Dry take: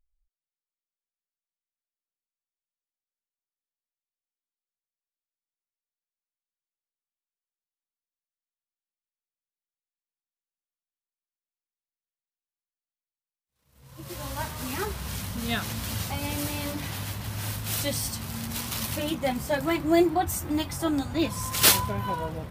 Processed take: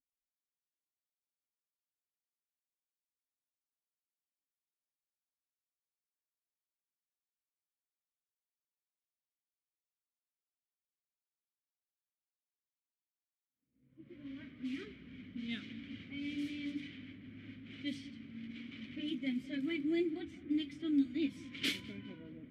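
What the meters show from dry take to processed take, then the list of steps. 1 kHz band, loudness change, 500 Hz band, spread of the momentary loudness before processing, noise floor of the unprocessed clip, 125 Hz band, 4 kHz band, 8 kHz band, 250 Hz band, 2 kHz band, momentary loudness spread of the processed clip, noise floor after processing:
−33.0 dB, −12.5 dB, −16.5 dB, 11 LU, below −85 dBFS, −22.0 dB, −14.0 dB, below −25 dB, −7.0 dB, −13.0 dB, 16 LU, below −85 dBFS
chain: formant filter i
low-pass that shuts in the quiet parts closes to 930 Hz, open at −34 dBFS
feedback echo with a low-pass in the loop 204 ms, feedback 46%, low-pass 3,400 Hz, level −20.5 dB

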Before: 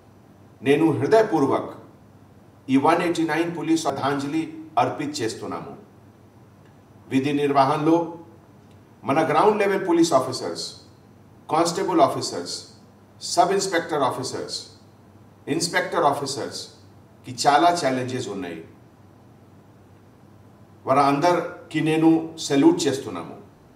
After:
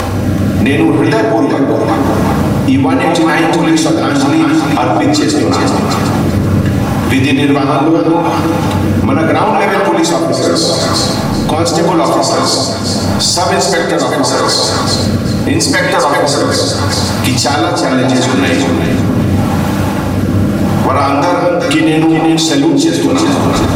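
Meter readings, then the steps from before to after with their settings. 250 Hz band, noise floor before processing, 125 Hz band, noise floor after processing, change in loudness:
+14.0 dB, −52 dBFS, +20.0 dB, −14 dBFS, +11.0 dB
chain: parametric band 340 Hz −6 dB 1.3 octaves
upward compression, threshold −22 dBFS
on a send: delay that swaps between a low-pass and a high-pass 190 ms, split 930 Hz, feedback 58%, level −4 dB
on the sum: downward compressor 5 to 1, threshold −27 dBFS, peak gain reduction 14.5 dB
rotating-speaker cabinet horn 0.8 Hz
in parallel at −5.5 dB: gain into a clipping stage and back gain 27.5 dB
on the sum: rectangular room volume 3,400 cubic metres, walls furnished, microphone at 2.3 metres
boost into a limiter +21 dB
level −1 dB

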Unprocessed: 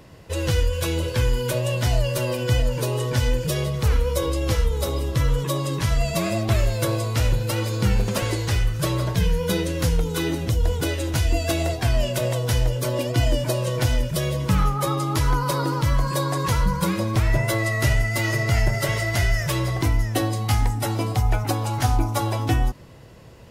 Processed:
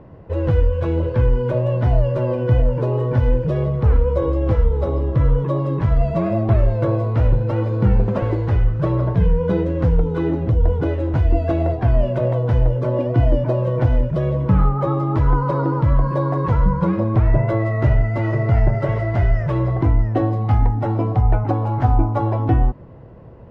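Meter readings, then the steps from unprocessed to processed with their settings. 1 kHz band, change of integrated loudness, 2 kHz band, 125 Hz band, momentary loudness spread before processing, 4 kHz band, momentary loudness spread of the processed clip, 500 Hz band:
+2.5 dB, +4.0 dB, −6.5 dB, +5.0 dB, 3 LU, below −15 dB, 3 LU, +4.5 dB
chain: low-pass filter 1,000 Hz 12 dB per octave
level +5 dB

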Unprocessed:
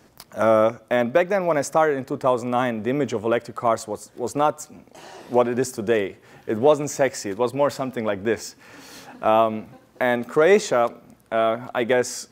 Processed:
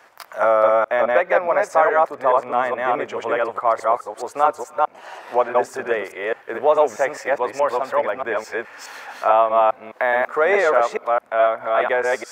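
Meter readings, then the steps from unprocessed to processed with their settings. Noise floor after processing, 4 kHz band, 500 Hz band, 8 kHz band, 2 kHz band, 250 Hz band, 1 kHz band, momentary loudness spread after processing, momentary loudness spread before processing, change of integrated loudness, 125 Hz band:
−47 dBFS, −3.5 dB, +2.0 dB, −7.5 dB, +5.0 dB, −9.0 dB, +6.0 dB, 9 LU, 11 LU, +2.5 dB, below −10 dB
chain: delay that plays each chunk backwards 211 ms, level −0.5 dB
three-way crossover with the lows and the highs turned down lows −23 dB, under 540 Hz, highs −16 dB, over 2,300 Hz
one half of a high-frequency compander encoder only
level +4.5 dB

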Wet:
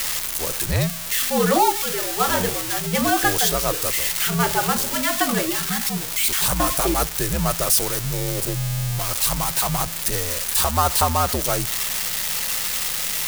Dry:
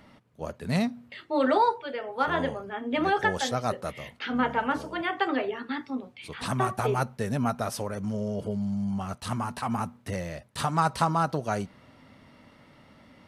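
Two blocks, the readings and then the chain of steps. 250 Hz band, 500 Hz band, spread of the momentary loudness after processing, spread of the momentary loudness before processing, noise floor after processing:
+2.5 dB, +4.5 dB, 5 LU, 11 LU, −28 dBFS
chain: spike at every zero crossing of −16 dBFS
mains hum 60 Hz, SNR 23 dB
frequency shifter −75 Hz
level +4.5 dB

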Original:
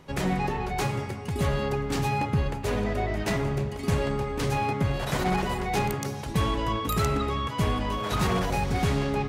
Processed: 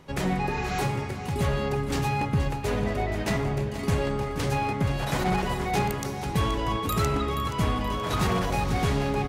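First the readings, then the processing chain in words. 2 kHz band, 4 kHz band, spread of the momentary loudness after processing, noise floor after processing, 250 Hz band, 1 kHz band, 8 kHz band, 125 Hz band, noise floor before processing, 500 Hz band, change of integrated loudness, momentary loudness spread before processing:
+0.5 dB, +0.5 dB, 3 LU, −33 dBFS, +0.5 dB, +0.5 dB, +0.5 dB, +0.5 dB, −35 dBFS, 0.0 dB, +0.5 dB, 3 LU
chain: healed spectral selection 0:00.50–0:00.79, 1,100–7,700 Hz both
repeating echo 476 ms, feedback 46%, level −11.5 dB

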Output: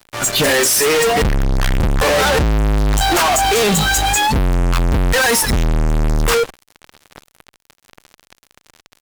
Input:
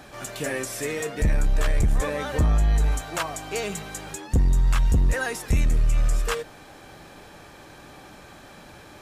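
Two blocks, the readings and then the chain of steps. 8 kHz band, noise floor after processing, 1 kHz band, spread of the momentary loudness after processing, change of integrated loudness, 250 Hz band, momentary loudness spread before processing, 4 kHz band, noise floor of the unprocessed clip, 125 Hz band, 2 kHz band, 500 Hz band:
+16.5 dB, −68 dBFS, +16.5 dB, 6 LU, +10.0 dB, +11.0 dB, 9 LU, +18.5 dB, −47 dBFS, +6.0 dB, +14.0 dB, +13.5 dB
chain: in parallel at −0.5 dB: compressor whose output falls as the input rises −21 dBFS, ratio −0.5
on the sum: noise reduction from a noise print of the clip's start 18 dB
fuzz pedal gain 45 dB, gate −48 dBFS

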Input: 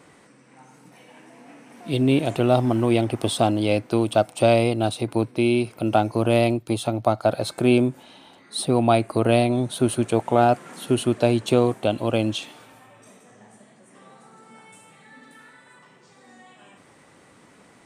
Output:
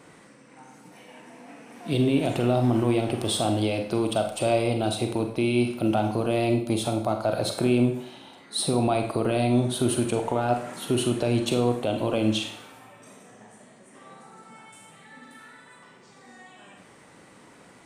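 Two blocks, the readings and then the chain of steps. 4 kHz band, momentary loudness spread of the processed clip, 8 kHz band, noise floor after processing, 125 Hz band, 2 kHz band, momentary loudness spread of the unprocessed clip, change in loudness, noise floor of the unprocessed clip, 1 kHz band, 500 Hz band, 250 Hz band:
−0.5 dB, 5 LU, +1.0 dB, −52 dBFS, −2.5 dB, −3.5 dB, 6 LU, −3.5 dB, −54 dBFS, −5.0 dB, −4.5 dB, −2.5 dB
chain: brickwall limiter −14 dBFS, peak gain reduction 9 dB
four-comb reverb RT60 0.54 s, combs from 33 ms, DRR 4.5 dB

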